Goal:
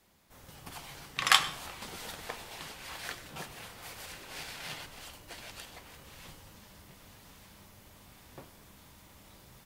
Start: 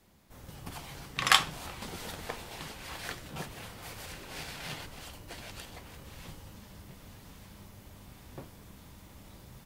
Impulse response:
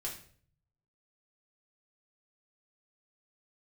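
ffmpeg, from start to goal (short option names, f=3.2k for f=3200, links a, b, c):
-filter_complex "[0:a]lowshelf=f=430:g=-7.5,asplit=2[a][b];[1:a]atrim=start_sample=2205,adelay=97[c];[b][c]afir=irnorm=-1:irlink=0,volume=-16.5dB[d];[a][d]amix=inputs=2:normalize=0"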